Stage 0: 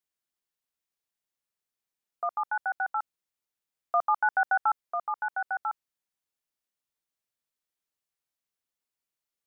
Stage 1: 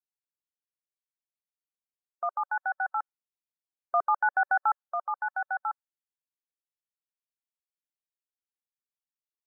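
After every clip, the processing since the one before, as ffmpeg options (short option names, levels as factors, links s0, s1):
-af "afftdn=nr=17:nf=-44"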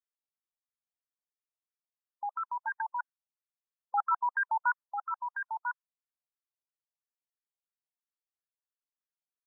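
-af "afreqshift=120,afftfilt=real='re*between(b*sr/1024,710*pow(1500/710,0.5+0.5*sin(2*PI*3*pts/sr))/1.41,710*pow(1500/710,0.5+0.5*sin(2*PI*3*pts/sr))*1.41)':imag='im*between(b*sr/1024,710*pow(1500/710,0.5+0.5*sin(2*PI*3*pts/sr))/1.41,710*pow(1500/710,0.5+0.5*sin(2*PI*3*pts/sr))*1.41)':win_size=1024:overlap=0.75,volume=0.794"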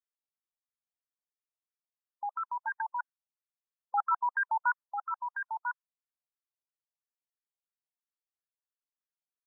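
-af anull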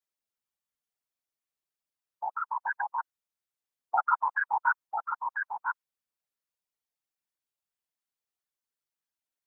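-af "afftfilt=real='hypot(re,im)*cos(2*PI*random(0))':imag='hypot(re,im)*sin(2*PI*random(1))':win_size=512:overlap=0.75,volume=2.66"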